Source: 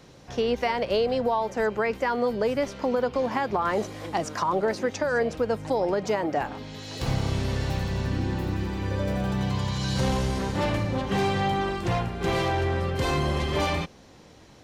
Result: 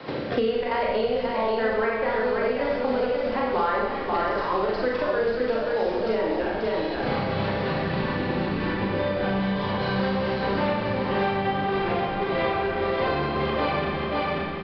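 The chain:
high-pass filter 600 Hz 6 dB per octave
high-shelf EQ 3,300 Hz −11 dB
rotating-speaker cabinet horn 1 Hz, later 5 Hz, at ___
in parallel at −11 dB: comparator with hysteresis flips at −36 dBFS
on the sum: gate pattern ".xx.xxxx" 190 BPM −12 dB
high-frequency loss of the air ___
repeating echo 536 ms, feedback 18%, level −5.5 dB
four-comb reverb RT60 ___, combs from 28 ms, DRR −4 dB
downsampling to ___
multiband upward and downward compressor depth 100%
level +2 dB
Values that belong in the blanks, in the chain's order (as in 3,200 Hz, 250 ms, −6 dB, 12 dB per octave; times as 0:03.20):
0:06.63, 56 metres, 0.86 s, 11,025 Hz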